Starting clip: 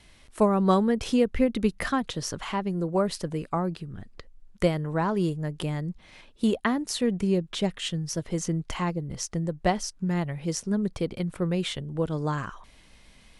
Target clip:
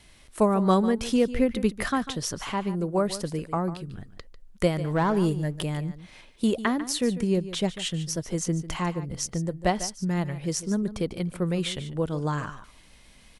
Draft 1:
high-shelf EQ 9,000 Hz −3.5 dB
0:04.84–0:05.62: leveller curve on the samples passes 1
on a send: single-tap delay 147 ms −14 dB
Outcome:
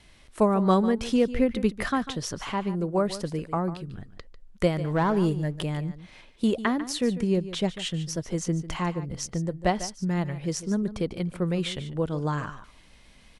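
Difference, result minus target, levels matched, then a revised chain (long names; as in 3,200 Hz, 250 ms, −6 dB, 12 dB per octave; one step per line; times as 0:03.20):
8,000 Hz band −3.5 dB
high-shelf EQ 9,000 Hz +7.5 dB
0:04.84–0:05.62: leveller curve on the samples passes 1
on a send: single-tap delay 147 ms −14 dB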